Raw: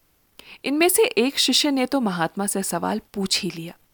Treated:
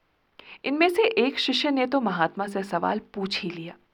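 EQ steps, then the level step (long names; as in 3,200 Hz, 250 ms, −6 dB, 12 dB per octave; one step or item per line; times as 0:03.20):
high-frequency loss of the air 330 metres
low-shelf EQ 330 Hz −9.5 dB
mains-hum notches 50/100/150/200/250/300/350/400/450 Hz
+3.5 dB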